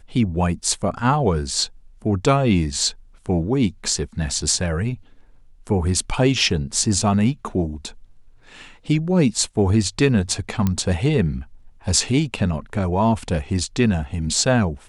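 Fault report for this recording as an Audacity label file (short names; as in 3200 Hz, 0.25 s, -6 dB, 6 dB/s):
10.670000	10.670000	pop -8 dBFS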